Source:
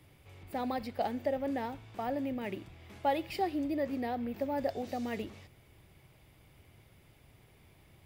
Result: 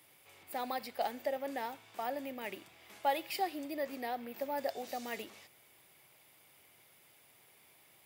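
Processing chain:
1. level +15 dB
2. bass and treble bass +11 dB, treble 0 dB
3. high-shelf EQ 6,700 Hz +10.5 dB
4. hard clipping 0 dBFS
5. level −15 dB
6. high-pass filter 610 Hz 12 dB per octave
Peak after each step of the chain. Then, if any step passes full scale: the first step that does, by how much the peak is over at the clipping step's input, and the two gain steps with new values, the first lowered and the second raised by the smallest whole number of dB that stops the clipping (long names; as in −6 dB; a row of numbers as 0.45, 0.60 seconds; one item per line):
−4.5, −2.5, −2.0, −2.0, −17.0, −20.5 dBFS
no step passes full scale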